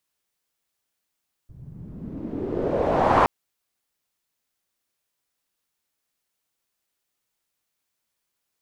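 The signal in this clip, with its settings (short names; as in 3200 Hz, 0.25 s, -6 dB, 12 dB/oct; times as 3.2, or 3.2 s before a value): swept filtered noise white, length 1.77 s lowpass, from 110 Hz, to 1000 Hz, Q 2.8, exponential, gain ramp +19.5 dB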